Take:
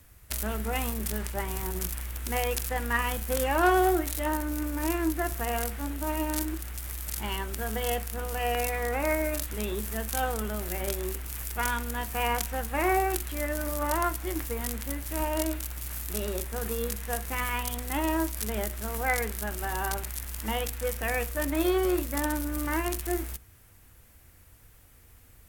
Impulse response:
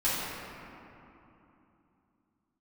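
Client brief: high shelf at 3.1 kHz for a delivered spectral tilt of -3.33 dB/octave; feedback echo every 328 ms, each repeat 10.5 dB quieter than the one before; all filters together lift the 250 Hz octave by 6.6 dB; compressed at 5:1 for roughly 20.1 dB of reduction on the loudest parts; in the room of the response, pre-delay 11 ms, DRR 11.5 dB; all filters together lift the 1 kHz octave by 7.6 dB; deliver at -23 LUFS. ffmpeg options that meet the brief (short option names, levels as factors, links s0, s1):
-filter_complex "[0:a]equalizer=f=250:t=o:g=8.5,equalizer=f=1000:t=o:g=8.5,highshelf=f=3100:g=9,acompressor=threshold=0.0141:ratio=5,aecho=1:1:328|656|984:0.299|0.0896|0.0269,asplit=2[s0][s1];[1:a]atrim=start_sample=2205,adelay=11[s2];[s1][s2]afir=irnorm=-1:irlink=0,volume=0.0708[s3];[s0][s3]amix=inputs=2:normalize=0,volume=5.31"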